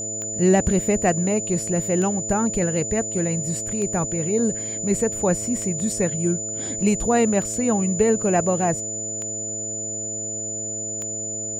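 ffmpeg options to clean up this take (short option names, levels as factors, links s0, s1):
-af "adeclick=t=4,bandreject=f=109.3:t=h:w=4,bandreject=f=218.6:t=h:w=4,bandreject=f=327.9:t=h:w=4,bandreject=f=437.2:t=h:w=4,bandreject=f=546.5:t=h:w=4,bandreject=f=655.8:t=h:w=4,bandreject=f=7000:w=30"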